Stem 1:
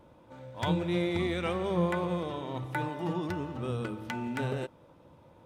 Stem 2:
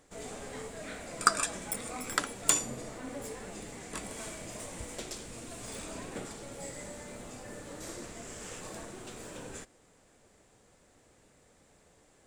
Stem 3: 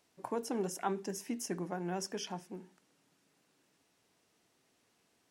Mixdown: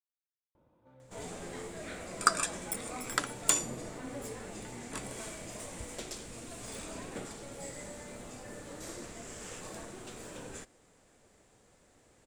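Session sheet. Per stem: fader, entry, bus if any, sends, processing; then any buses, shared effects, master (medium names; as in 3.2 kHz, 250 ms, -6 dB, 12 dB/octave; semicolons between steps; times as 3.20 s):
-11.5 dB, 0.55 s, bus A, no send, treble shelf 2.3 kHz -10 dB
-1.0 dB, 1.00 s, no bus, no send, none
mute
bus A: 0.0 dB, compression, threshold -47 dBFS, peak gain reduction 11.5 dB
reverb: none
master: none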